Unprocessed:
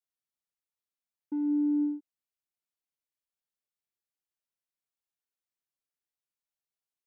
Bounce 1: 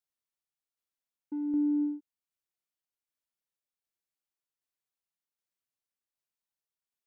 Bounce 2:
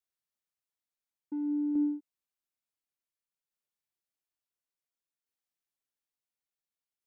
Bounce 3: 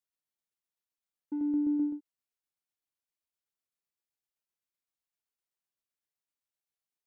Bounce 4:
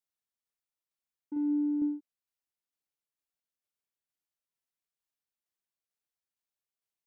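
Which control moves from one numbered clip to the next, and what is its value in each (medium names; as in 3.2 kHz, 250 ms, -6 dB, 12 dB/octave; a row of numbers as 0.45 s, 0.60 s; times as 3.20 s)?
tremolo, rate: 1.3 Hz, 0.57 Hz, 7.8 Hz, 2.2 Hz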